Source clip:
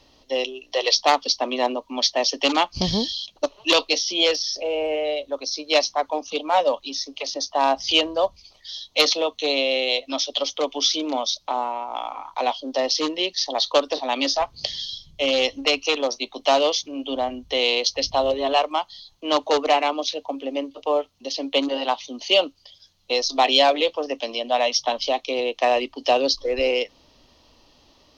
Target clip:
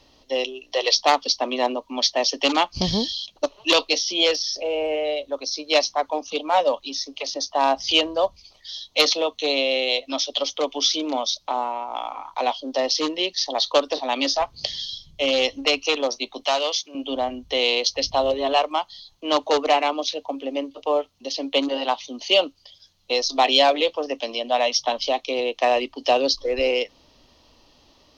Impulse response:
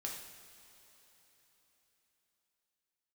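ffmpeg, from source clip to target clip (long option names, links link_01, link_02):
-filter_complex "[0:a]asettb=1/sr,asplit=3[link_01][link_02][link_03];[link_01]atrim=end=16.444[link_04];[link_02]atrim=start=16.44:end=16.95,asetpts=PTS-STARTPTS,afade=type=in:duration=0.004:curve=qsin,afade=type=out:start_time=0.506:duration=0.004:curve=qsin,highpass=frequency=950:poles=1[link_05];[link_03]atrim=start=16.946[link_06];[link_04][link_05]acrossfade=duration=0.004:curve1=hsin:curve2=qsin[link_07];[link_07][link_06]acrossfade=duration=0.004:curve1=qsin:curve2=hsin"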